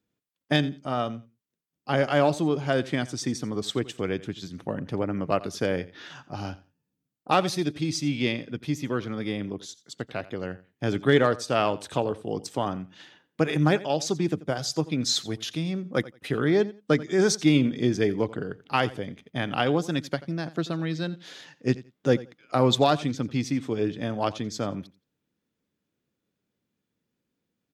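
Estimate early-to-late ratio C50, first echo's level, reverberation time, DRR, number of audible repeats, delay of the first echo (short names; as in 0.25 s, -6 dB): none, -18.5 dB, none, none, 2, 87 ms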